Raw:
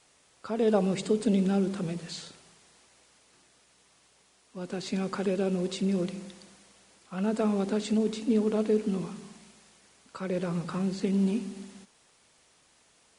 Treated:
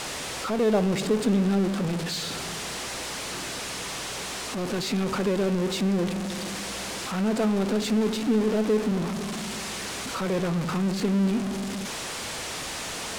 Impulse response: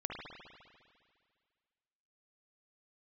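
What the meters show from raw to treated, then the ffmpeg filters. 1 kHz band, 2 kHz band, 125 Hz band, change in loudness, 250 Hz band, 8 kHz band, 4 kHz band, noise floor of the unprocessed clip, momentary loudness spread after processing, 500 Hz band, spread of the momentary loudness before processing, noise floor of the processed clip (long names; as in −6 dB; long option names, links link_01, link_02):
+7.5 dB, +11.5 dB, +4.5 dB, +2.0 dB, +3.5 dB, +13.5 dB, +12.0 dB, −64 dBFS, 8 LU, +3.0 dB, 17 LU, −34 dBFS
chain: -af "aeval=exprs='val(0)+0.5*0.0501*sgn(val(0))':channel_layout=same,adynamicsmooth=sensitivity=4.5:basefreq=7500"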